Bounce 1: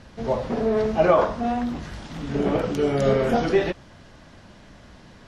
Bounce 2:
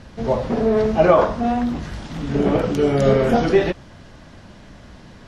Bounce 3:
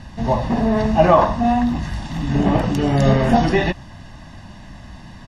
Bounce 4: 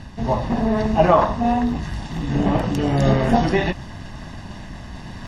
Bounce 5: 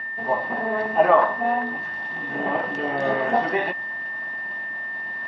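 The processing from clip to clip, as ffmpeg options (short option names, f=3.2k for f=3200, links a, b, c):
-af "lowshelf=f=350:g=3,volume=3dB"
-af "aecho=1:1:1.1:0.68,volume=1.5dB"
-af "areverse,acompressor=mode=upward:threshold=-24dB:ratio=2.5,areverse,tremolo=f=200:d=0.462"
-af "aeval=exprs='val(0)+0.0501*sin(2*PI*1800*n/s)':c=same,highpass=480,lowpass=2.3k"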